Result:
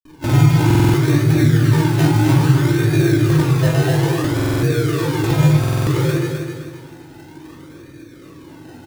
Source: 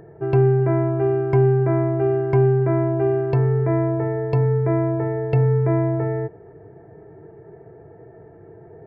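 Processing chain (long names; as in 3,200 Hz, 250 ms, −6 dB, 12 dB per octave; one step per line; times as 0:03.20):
low-pass filter 1,000 Hz 24 dB per octave
parametric band 510 Hz +8 dB 1.4 octaves
formants moved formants −6 semitones
granular cloud, pitch spread up and down by 3 semitones
sample-and-hold swept by an LFO 30×, swing 60% 0.6 Hz
double-tracking delay 45 ms −12 dB
repeating echo 258 ms, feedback 40%, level −6 dB
rectangular room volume 540 cubic metres, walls furnished, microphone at 2.6 metres
buffer that repeats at 0:00.66/0:04.35/0:05.59, samples 2,048, times 5
level −6 dB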